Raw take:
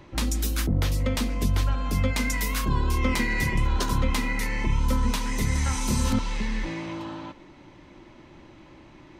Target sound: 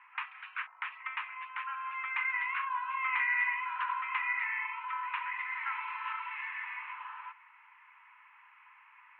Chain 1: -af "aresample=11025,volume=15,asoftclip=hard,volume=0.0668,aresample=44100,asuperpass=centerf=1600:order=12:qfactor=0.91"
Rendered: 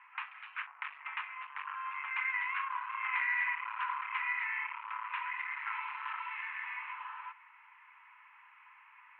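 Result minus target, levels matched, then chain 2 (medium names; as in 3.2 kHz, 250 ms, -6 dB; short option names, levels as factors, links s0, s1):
overload inside the chain: distortion +39 dB
-af "aresample=11025,volume=5.01,asoftclip=hard,volume=0.2,aresample=44100,asuperpass=centerf=1600:order=12:qfactor=0.91"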